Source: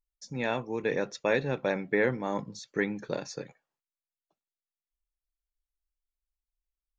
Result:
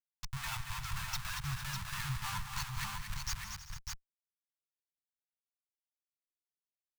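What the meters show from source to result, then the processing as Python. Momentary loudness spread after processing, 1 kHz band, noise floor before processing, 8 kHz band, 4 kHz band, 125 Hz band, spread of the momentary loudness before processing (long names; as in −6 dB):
7 LU, −5.0 dB, below −85 dBFS, can't be measured, +3.0 dB, −1.0 dB, 12 LU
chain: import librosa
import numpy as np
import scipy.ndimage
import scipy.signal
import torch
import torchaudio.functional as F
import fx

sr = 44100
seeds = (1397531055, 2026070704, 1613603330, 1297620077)

p1 = fx.bin_expand(x, sr, power=3.0)
p2 = fx.schmitt(p1, sr, flips_db=-45.5)
p3 = scipy.signal.sosfilt(scipy.signal.ellip(3, 1.0, 50, [140.0, 990.0], 'bandstop', fs=sr, output='sos'), p2)
p4 = p3 + fx.echo_multitap(p3, sr, ms=(167, 231, 318, 385, 452, 601), db=(-14.0, -7.5, -15.0, -18.0, -14.0, -4.5), dry=0)
y = p4 * 10.0 ** (5.5 / 20.0)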